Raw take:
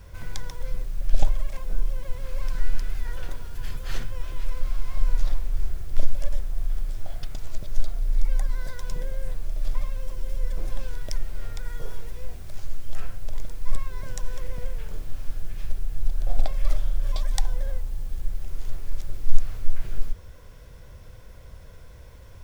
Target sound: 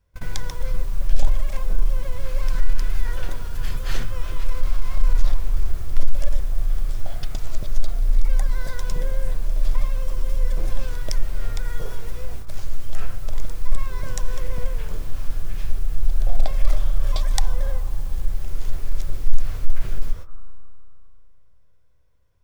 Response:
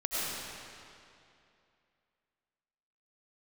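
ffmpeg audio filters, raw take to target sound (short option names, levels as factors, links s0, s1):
-filter_complex "[0:a]acontrast=75,agate=range=0.0398:threshold=0.0562:ratio=16:detection=peak,asplit=2[s0][s1];[s1]lowpass=f=1200:t=q:w=8[s2];[1:a]atrim=start_sample=2205,adelay=149[s3];[s2][s3]afir=irnorm=-1:irlink=0,volume=0.0473[s4];[s0][s4]amix=inputs=2:normalize=0,volume=0.891"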